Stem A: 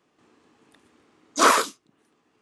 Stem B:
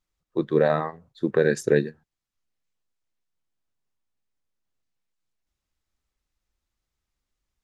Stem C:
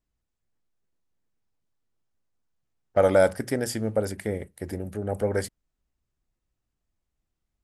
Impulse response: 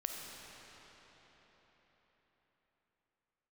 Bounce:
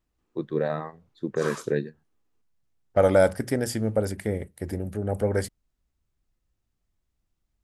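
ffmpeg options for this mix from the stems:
-filter_complex "[0:a]volume=-20dB[a];[1:a]volume=-7.5dB[b];[2:a]volume=-0.5dB[c];[a][b][c]amix=inputs=3:normalize=0,lowshelf=f=250:g=4.5"

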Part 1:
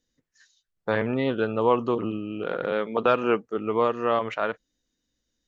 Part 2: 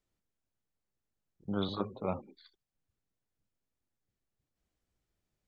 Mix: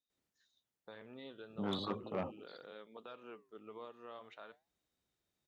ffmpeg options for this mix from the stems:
-filter_complex "[0:a]equalizer=f=3.7k:w=4.7:g=13,alimiter=limit=-16.5dB:level=0:latency=1:release=451,flanger=delay=2.7:depth=8.7:regen=-86:speed=0.38:shape=sinusoidal,volume=-17dB[a];[1:a]asoftclip=type=tanh:threshold=-28dB,adelay=100,volume=0dB[b];[a][b]amix=inputs=2:normalize=0,highpass=f=180:p=1"

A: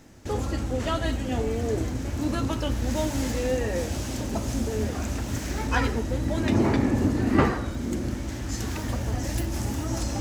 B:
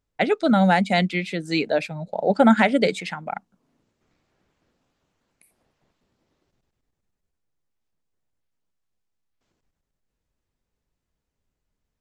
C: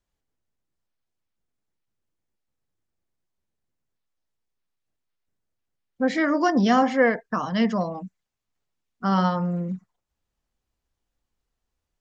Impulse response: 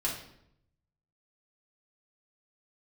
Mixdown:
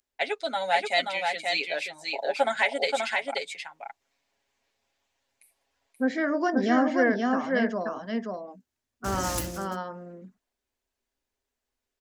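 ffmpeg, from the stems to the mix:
-filter_complex "[0:a]highshelf=f=2.6k:g=11,volume=-4.5dB,asplit=3[a][b][c];[a]atrim=end=5.87,asetpts=PTS-STARTPTS,afade=t=out:st=5.866:d=0.004:c=hsin[d];[b]atrim=start=5.87:end=8.21,asetpts=PTS-STARTPTS,volume=0[e];[c]atrim=start=8.21,asetpts=PTS-STARTPTS,afade=t=in:d=0.004:c=hsin[f];[d][e][f]concat=n=3:v=0:a=1[g];[1:a]highpass=800,equalizer=f=1.3k:w=2.8:g=-10,aecho=1:1:7.3:0.74,volume=-2.5dB,asplit=2[h][i];[i]volume=-4dB[j];[2:a]equalizer=f=160:t=o:w=0.33:g=-12,equalizer=f=250:t=o:w=0.33:g=10,equalizer=f=400:t=o:w=0.33:g=10,equalizer=f=630:t=o:w=0.33:g=7,equalizer=f=1.6k:t=o:w=0.33:g=8,volume=-8.5dB,asplit=3[k][l][m];[l]volume=-3.5dB[n];[m]apad=whole_len=450009[o];[g][o]sidechaingate=range=-56dB:threshold=-36dB:ratio=16:detection=peak[p];[j][n]amix=inputs=2:normalize=0,aecho=0:1:530:1[q];[p][h][k][q]amix=inputs=4:normalize=0,lowshelf=f=230:g=-4"

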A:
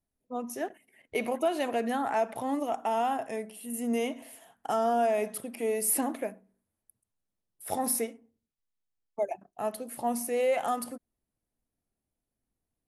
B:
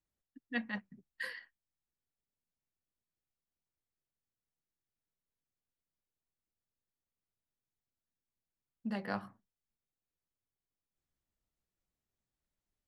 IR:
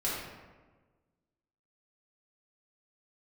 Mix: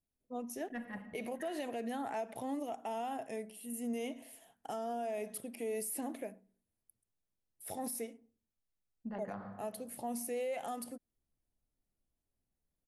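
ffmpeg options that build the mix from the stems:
-filter_complex "[0:a]equalizer=f=1.2k:w=1.3:g=-7,volume=-5dB[a];[1:a]equalizer=f=240:w=0.49:g=-6.5,adynamicsmooth=sensitivity=0.5:basefreq=920,adelay=200,volume=2.5dB,asplit=2[b][c];[c]volume=-11.5dB[d];[2:a]atrim=start_sample=2205[e];[d][e]afir=irnorm=-1:irlink=0[f];[a][b][f]amix=inputs=3:normalize=0,alimiter=level_in=6.5dB:limit=-24dB:level=0:latency=1:release=94,volume=-6.5dB"

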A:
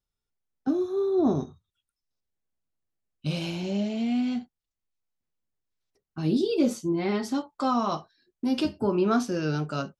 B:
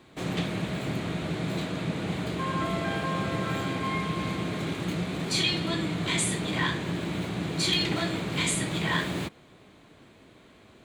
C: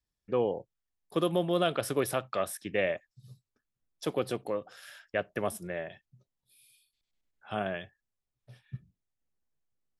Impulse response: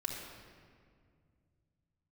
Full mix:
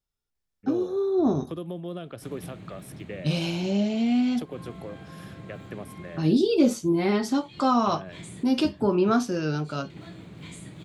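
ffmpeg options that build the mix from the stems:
-filter_complex "[0:a]dynaudnorm=f=680:g=5:m=4dB,volume=-0.5dB,asplit=2[a][b];[1:a]lowshelf=f=250:g=11,adelay=2050,volume=-18.5dB[c];[2:a]acrossover=split=350[d][e];[e]acompressor=threshold=-38dB:ratio=6[f];[d][f]amix=inputs=2:normalize=0,adelay=350,volume=-2.5dB[g];[b]apad=whole_len=568834[h];[c][h]sidechaincompress=threshold=-40dB:ratio=8:attack=16:release=167[i];[a][i][g]amix=inputs=3:normalize=0"

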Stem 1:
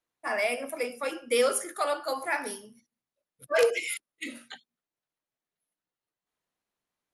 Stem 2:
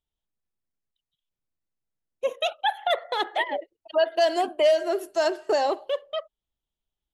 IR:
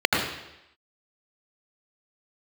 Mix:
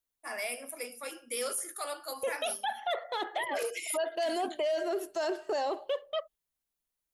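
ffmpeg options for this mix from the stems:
-filter_complex "[0:a]aemphasis=mode=production:type=75kf,volume=-10.5dB[a];[1:a]agate=range=-10dB:threshold=-48dB:ratio=16:detection=peak,volume=-2dB[b];[a][b]amix=inputs=2:normalize=0,alimiter=level_in=0.5dB:limit=-24dB:level=0:latency=1:release=11,volume=-0.5dB"

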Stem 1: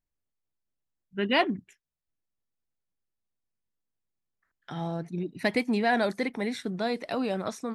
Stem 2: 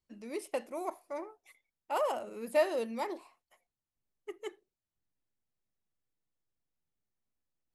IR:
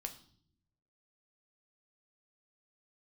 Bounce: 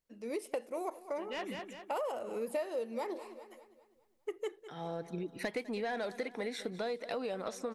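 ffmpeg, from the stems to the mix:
-filter_complex "[0:a]lowshelf=f=270:g=-10.5,asoftclip=type=tanh:threshold=-21dB,volume=1.5dB,asplit=2[a][b];[b]volume=-18.5dB[c];[1:a]dynaudnorm=f=190:g=3:m=11dB,volume=-5dB,asplit=3[d][e][f];[e]volume=-20.5dB[g];[f]apad=whole_len=341645[h];[a][h]sidechaincompress=threshold=-48dB:ratio=8:attack=22:release=437[i];[c][g]amix=inputs=2:normalize=0,aecho=0:1:201|402|603|804|1005|1206:1|0.45|0.202|0.0911|0.041|0.0185[j];[i][d][j]amix=inputs=3:normalize=0,equalizer=f=480:t=o:w=0.39:g=8,acompressor=threshold=-35dB:ratio=5"

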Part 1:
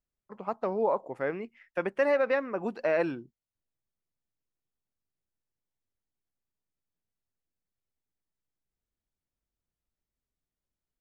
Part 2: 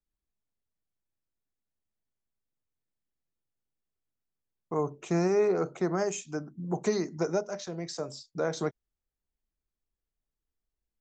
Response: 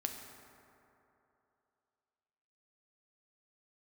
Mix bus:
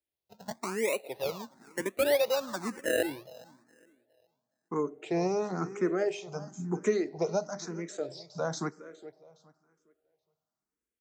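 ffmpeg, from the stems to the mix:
-filter_complex "[0:a]acrusher=samples=26:mix=1:aa=0.000001:lfo=1:lforange=26:lforate=0.76,dynaudnorm=f=110:g=9:m=8dB,bandreject=f=3.1k:w=7.6,volume=-8dB,asplit=3[a][b][c];[b]volume=-23.5dB[d];[c]volume=-21dB[e];[1:a]volume=1dB,asplit=3[f][g][h];[g]volume=-17.5dB[i];[h]volume=-15.5dB[j];[2:a]atrim=start_sample=2205[k];[d][i]amix=inputs=2:normalize=0[l];[l][k]afir=irnorm=-1:irlink=0[m];[e][j]amix=inputs=2:normalize=0,aecho=0:1:414|828|1242|1656:1|0.29|0.0841|0.0244[n];[a][f][m][n]amix=inputs=4:normalize=0,highpass=130,asplit=2[o][p];[p]afreqshift=1[q];[o][q]amix=inputs=2:normalize=1"

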